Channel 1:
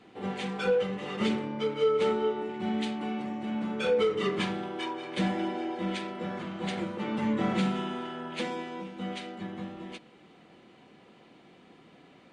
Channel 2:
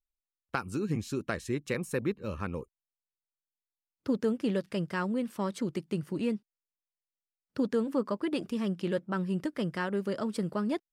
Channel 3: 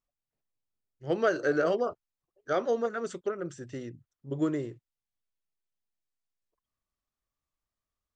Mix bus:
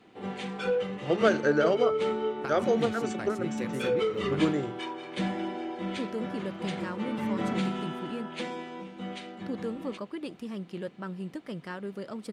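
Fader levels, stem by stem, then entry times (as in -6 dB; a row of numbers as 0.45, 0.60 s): -2.0, -6.0, +2.0 dB; 0.00, 1.90, 0.00 s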